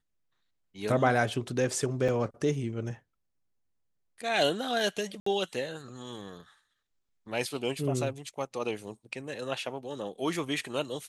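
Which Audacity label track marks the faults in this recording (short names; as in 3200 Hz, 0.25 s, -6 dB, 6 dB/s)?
2.080000	2.090000	gap 5.9 ms
5.200000	5.260000	gap 64 ms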